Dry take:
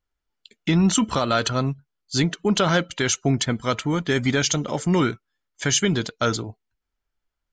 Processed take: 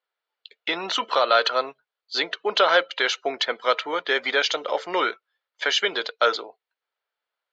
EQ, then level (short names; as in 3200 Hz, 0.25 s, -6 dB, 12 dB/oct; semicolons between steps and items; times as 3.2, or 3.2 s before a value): elliptic band-pass 480–4200 Hz, stop band 70 dB; +4.0 dB